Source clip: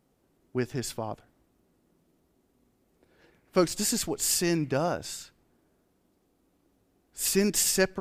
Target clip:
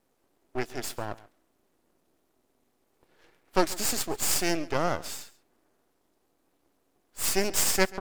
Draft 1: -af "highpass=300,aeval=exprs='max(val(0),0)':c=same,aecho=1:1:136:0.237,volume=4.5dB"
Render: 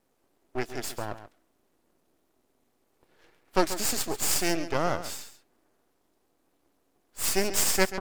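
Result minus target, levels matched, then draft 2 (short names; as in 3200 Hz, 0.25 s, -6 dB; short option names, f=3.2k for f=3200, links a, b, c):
echo-to-direct +7.5 dB
-af "highpass=300,aeval=exprs='max(val(0),0)':c=same,aecho=1:1:136:0.1,volume=4.5dB"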